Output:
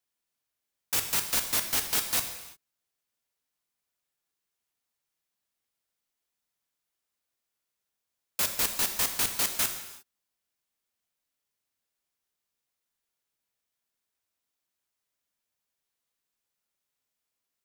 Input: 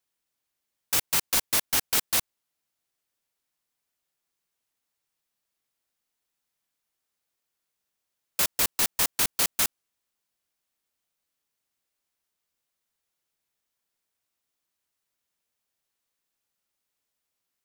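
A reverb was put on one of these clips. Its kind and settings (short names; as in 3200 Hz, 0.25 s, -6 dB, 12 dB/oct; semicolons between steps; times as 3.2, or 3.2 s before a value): non-linear reverb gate 0.38 s falling, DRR 5.5 dB; gain -3.5 dB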